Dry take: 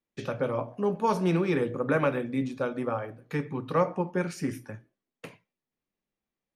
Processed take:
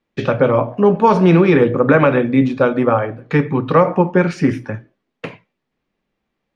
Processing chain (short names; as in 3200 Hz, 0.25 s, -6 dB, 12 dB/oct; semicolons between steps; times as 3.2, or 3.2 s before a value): LPF 3500 Hz 12 dB/oct; maximiser +16.5 dB; gain -1 dB